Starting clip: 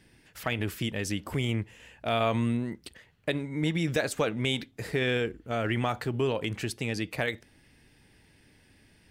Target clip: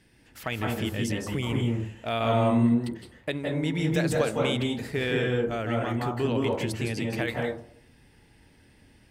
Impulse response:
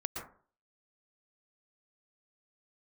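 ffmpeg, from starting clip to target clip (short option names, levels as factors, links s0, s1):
-filter_complex "[0:a]asettb=1/sr,asplit=3[s0][s1][s2];[s0]atrim=end=5.624[s3];[s1]atrim=start=5.62:end=6.03,asetpts=PTS-STARTPTS,afade=t=in:d=0.004:c=qsin,afade=t=out:st=0.406:d=0.004:c=qsin,acompressor=threshold=0.0355:ratio=3[s4];[s2]atrim=start=6.026[s5];[s3][s4]acrossfade=d=0.004:c1=hsin:c2=qsin[s6];[s6][s5]acrossfade=d=0.004:c1=qsin:c2=hsin[s7];[1:a]atrim=start_sample=2205,asetrate=31311,aresample=44100[s8];[s7][s8]afir=irnorm=-1:irlink=0,volume=0.841"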